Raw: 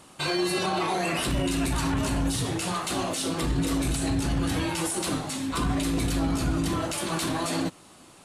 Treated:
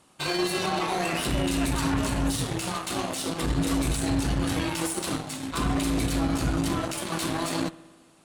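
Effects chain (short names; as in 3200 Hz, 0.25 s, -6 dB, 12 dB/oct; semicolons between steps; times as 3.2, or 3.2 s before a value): spring tank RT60 1.6 s, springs 58 ms, chirp 45 ms, DRR 11.5 dB; added harmonics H 7 -21 dB, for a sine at -15 dBFS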